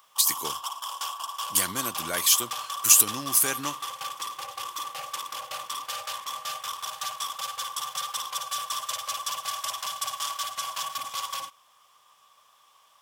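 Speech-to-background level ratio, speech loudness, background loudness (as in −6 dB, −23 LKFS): 10.5 dB, −22.0 LKFS, −32.5 LKFS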